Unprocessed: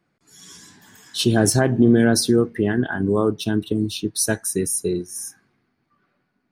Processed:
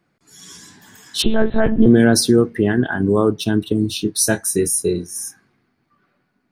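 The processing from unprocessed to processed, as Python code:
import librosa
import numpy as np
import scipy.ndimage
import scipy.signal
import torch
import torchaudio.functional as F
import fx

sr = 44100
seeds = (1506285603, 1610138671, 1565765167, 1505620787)

y = fx.lpc_monotone(x, sr, seeds[0], pitch_hz=220.0, order=10, at=(1.22, 1.86))
y = fx.doubler(y, sr, ms=24.0, db=-7.5, at=(3.87, 5.09))
y = F.gain(torch.from_numpy(y), 3.5).numpy()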